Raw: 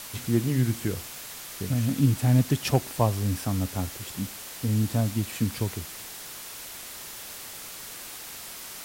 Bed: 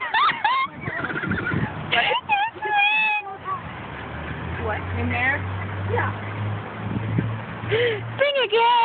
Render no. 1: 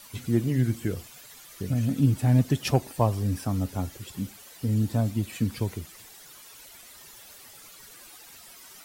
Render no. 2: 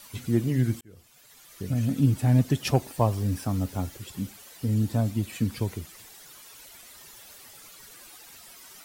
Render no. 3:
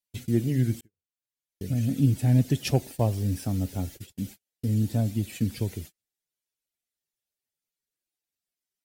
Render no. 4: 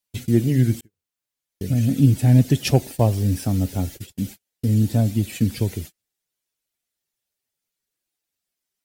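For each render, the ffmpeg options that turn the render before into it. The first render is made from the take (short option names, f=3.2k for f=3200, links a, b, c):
-af "afftdn=nr=12:nf=-41"
-filter_complex "[0:a]asettb=1/sr,asplit=3[a][b][c];[a]atrim=end=2.764[d];[b]atrim=start=2.76:end=3.97,asetpts=PTS-STARTPTS,afade=t=in:d=0.004:c=qsin,afade=t=out:st=1.206:d=0.004:c=qsin,acrusher=bits=7:mix=0:aa=0.5[e];[c]atrim=start=3.966[f];[d][e]acrossfade=d=0.004:c1=hsin:c2=qsin[g];[g][f]acrossfade=d=0.004:c1=qsin:c2=hsin,asplit=2[h][i];[h]atrim=end=0.81,asetpts=PTS-STARTPTS,afade=t=out:st=0.806:d=0.004:c=hsin[j];[i]atrim=start=0.81,asetpts=PTS-STARTPTS,afade=t=in:d=1[k];[j][k]concat=n=2:v=0:a=1"
-af "agate=range=-42dB:threshold=-39dB:ratio=16:detection=peak,equalizer=f=1.1k:w=1.7:g=-12"
-af "volume=6.5dB"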